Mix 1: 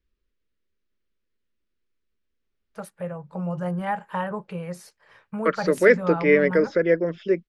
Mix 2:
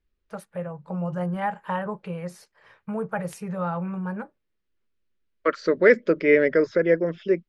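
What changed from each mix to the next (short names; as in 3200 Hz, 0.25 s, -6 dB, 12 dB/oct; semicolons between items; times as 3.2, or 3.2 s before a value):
first voice: entry -2.45 s; master: add high shelf 5600 Hz -4.5 dB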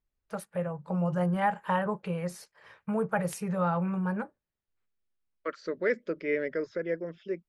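second voice -12.0 dB; master: add high shelf 5600 Hz +4.5 dB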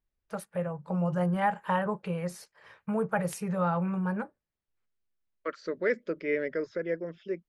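none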